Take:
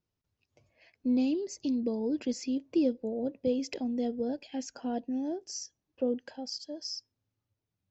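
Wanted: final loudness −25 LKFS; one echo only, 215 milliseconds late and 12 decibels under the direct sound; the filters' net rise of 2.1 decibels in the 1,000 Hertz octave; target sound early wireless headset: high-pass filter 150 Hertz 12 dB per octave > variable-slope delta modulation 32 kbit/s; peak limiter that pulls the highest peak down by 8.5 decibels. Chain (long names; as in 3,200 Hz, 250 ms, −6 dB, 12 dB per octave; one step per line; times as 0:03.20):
parametric band 1,000 Hz +3.5 dB
brickwall limiter −26 dBFS
high-pass filter 150 Hz 12 dB per octave
single-tap delay 215 ms −12 dB
variable-slope delta modulation 32 kbit/s
level +10.5 dB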